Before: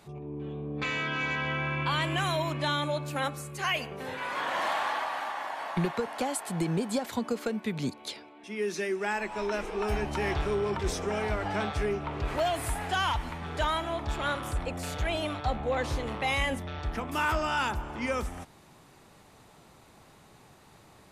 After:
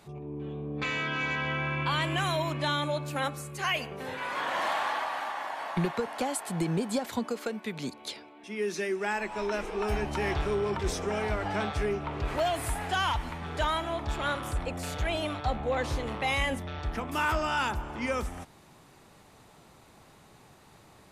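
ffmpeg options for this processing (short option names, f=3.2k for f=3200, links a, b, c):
-filter_complex "[0:a]asettb=1/sr,asplit=3[a][b][c];[a]atrim=end=7.264[d];[b]atrim=start=7.26:end=7.93,asetpts=PTS-STARTPTS,afade=t=in:d=0.004:c=qsin,afade=t=out:st=0.666:d=0.004:c=qsin,lowshelf=f=200:g=-10.5[e];[c]atrim=start=7.926[f];[d][e]acrossfade=d=0.004:c1=hsin:c2=qsin[g];[g][f]acrossfade=d=0.004:c1=qsin:c2=hsin"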